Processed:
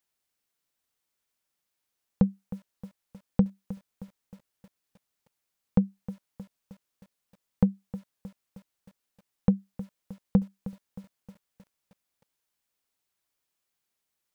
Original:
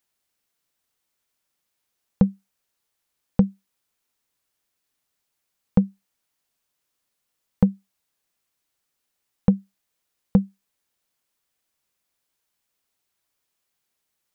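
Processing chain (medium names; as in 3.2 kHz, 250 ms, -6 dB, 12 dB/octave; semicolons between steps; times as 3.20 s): bit-crushed delay 312 ms, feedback 55%, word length 7-bit, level -15 dB; trim -4.5 dB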